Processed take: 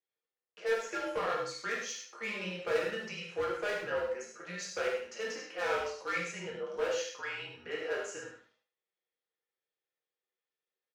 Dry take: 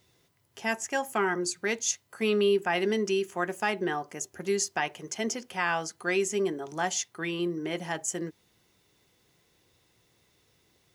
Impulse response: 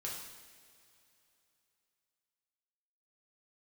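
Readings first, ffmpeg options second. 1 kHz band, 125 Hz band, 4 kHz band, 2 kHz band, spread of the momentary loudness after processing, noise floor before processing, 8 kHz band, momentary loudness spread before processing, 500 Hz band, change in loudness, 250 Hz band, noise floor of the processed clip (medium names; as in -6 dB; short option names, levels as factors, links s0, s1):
-7.0 dB, -10.5 dB, -6.0 dB, -5.0 dB, 7 LU, -68 dBFS, -13.0 dB, 7 LU, -5.0 dB, -6.5 dB, -14.5 dB, under -85 dBFS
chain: -filter_complex "[0:a]agate=range=0.0631:threshold=0.00112:ratio=16:detection=peak,lowpass=3200,aecho=1:1:7:0.32,acrossover=split=1400[s0][s1];[s1]acontrast=89[s2];[s0][s2]amix=inputs=2:normalize=0,afreqshift=-220,asoftclip=type=tanh:threshold=0.106,highpass=f=430:t=q:w=4.9,asoftclip=type=hard:threshold=0.0944,aecho=1:1:75|150|225:0.376|0.094|0.0235[s3];[1:a]atrim=start_sample=2205,atrim=end_sample=6174[s4];[s3][s4]afir=irnorm=-1:irlink=0,volume=0.473"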